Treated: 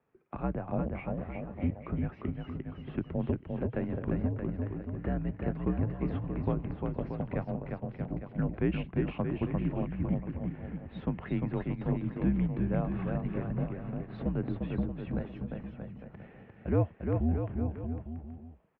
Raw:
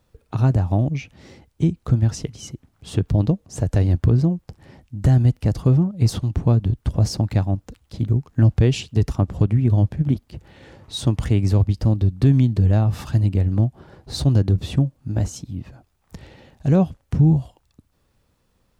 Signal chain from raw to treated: mistuned SSB -75 Hz 200–2500 Hz; bouncing-ball echo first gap 350 ms, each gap 0.8×, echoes 5; trim -7 dB

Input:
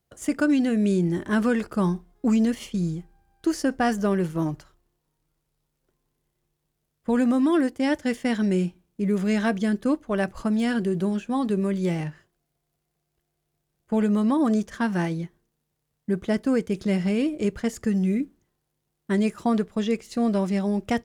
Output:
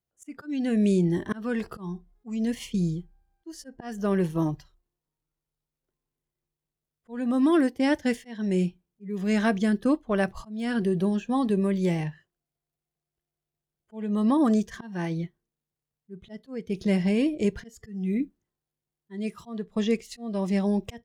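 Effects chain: slow attack 374 ms; spectral noise reduction 12 dB

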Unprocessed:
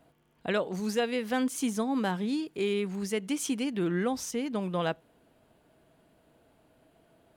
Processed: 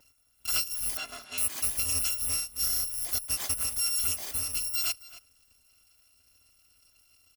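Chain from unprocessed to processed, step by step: bit-reversed sample order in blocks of 256 samples; 0.97–1.38 s: band-pass 240–4100 Hz; echo from a far wall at 46 m, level -15 dB

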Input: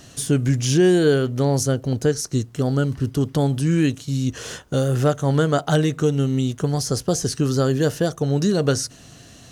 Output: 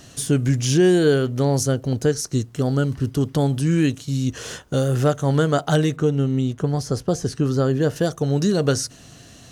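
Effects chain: 5.96–7.96 s: treble shelf 3.3 kHz -10 dB

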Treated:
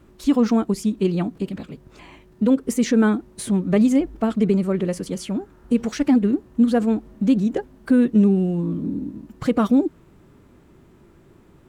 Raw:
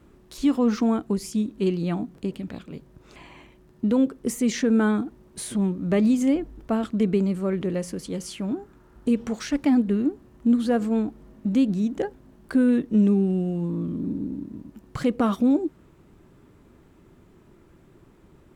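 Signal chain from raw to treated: time stretch by phase-locked vocoder 0.63×; trim +4 dB

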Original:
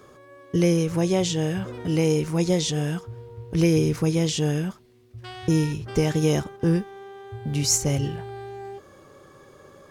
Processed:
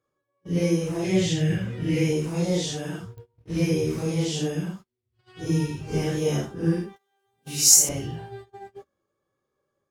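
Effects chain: phase randomisation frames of 200 ms; 6.96–7.89 s: RIAA curve recording; gate -37 dBFS, range -26 dB; 1.04–2.13 s: graphic EQ 125/1000/2000 Hz +9/-9/+9 dB; clicks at 3.18 s, -31 dBFS; trim -3 dB

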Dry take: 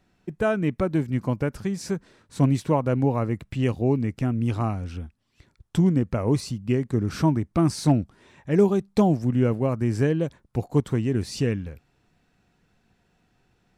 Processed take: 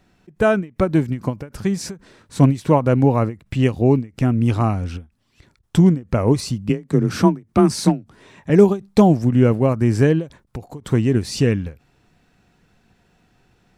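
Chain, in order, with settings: 6.69–8.50 s: frequency shift +26 Hz; endings held to a fixed fall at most 240 dB/s; trim +7 dB

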